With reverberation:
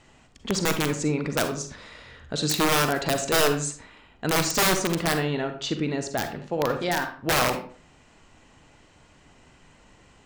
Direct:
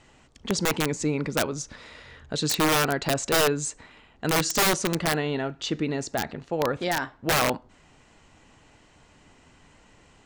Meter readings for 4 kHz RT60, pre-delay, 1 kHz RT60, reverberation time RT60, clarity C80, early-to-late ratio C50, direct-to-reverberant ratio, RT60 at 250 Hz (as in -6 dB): 0.30 s, 39 ms, 0.45 s, 0.45 s, 13.5 dB, 8.5 dB, 7.0 dB, 0.45 s